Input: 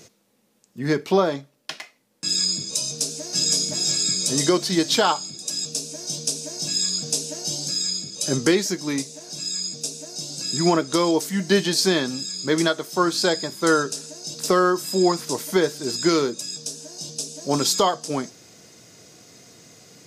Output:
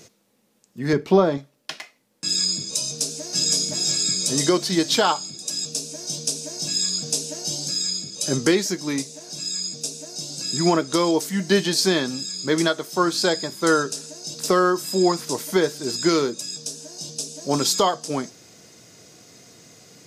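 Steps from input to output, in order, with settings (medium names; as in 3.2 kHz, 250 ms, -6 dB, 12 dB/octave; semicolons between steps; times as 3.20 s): 0.93–1.38 s: tilt EQ -2 dB/octave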